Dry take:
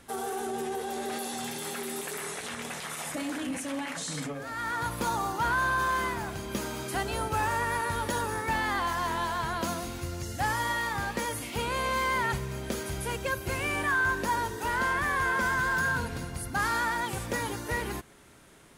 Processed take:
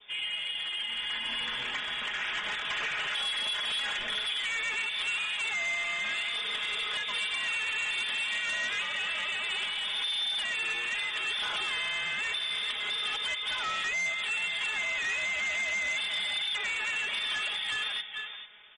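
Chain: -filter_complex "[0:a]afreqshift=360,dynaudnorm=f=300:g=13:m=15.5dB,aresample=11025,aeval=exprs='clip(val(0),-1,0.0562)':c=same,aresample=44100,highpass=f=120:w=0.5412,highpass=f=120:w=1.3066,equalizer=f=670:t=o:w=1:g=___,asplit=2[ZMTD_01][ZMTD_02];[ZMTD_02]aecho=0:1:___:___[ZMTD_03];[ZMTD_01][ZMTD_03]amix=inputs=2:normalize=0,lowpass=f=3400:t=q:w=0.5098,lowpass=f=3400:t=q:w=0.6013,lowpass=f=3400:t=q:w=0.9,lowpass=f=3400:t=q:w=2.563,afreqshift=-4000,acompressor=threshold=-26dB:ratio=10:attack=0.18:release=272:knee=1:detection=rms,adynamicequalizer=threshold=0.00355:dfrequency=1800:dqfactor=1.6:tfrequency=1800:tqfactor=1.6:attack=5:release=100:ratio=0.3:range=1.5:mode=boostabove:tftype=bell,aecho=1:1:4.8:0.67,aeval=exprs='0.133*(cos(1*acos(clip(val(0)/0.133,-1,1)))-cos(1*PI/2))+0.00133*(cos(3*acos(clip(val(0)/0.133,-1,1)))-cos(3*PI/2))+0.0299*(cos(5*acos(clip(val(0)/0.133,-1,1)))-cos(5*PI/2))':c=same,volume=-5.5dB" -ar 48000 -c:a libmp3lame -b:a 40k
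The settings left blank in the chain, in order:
-3, 442, 0.2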